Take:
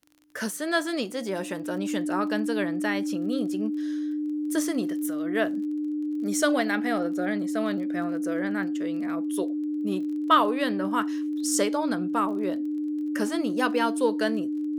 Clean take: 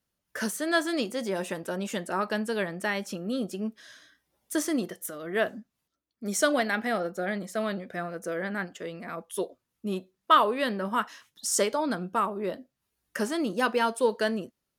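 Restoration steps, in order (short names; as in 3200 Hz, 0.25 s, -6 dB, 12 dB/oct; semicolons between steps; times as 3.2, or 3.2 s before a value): de-click; notch 300 Hz, Q 30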